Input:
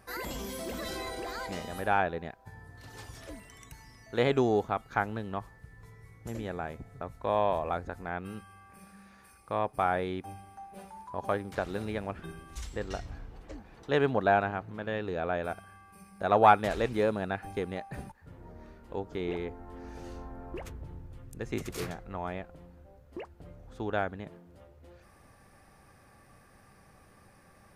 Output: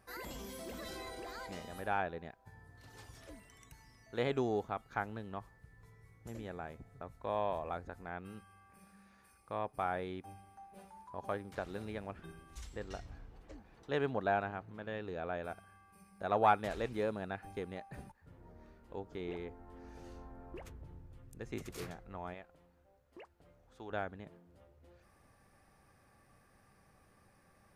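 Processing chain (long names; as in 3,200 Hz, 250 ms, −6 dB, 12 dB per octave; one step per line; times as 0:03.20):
0:22.34–0:23.90: low-shelf EQ 400 Hz −10 dB
level −8 dB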